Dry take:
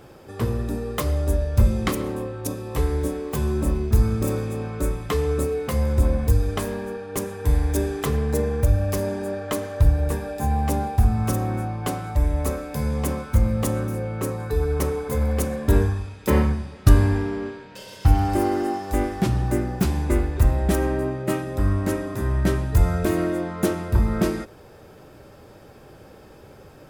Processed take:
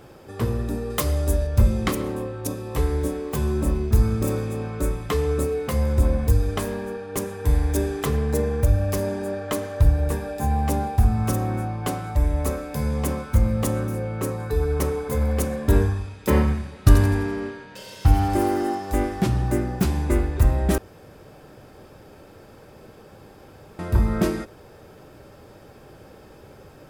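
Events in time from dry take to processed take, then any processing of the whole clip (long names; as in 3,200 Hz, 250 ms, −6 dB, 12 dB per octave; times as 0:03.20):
0:00.90–0:01.47: high-shelf EQ 3,700 Hz +6.5 dB
0:16.39–0:18.75: delay with a high-pass on its return 84 ms, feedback 48%, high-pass 1,800 Hz, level −6 dB
0:20.78–0:23.79: fill with room tone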